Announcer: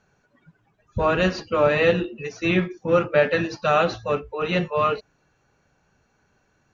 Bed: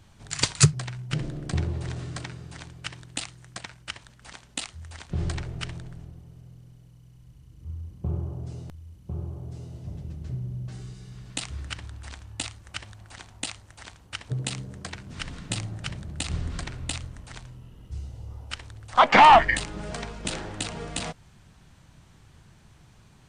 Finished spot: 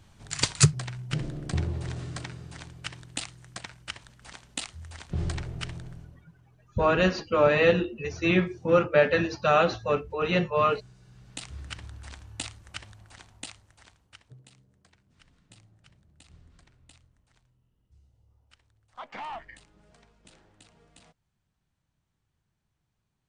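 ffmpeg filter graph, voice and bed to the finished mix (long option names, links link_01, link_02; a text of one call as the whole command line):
ffmpeg -i stem1.wav -i stem2.wav -filter_complex "[0:a]adelay=5800,volume=-2dB[link_01];[1:a]volume=8.5dB,afade=type=out:start_time=5.92:duration=0.34:silence=0.266073,afade=type=in:start_time=10.99:duration=0.86:silence=0.316228,afade=type=out:start_time=12.66:duration=1.76:silence=0.0794328[link_02];[link_01][link_02]amix=inputs=2:normalize=0" out.wav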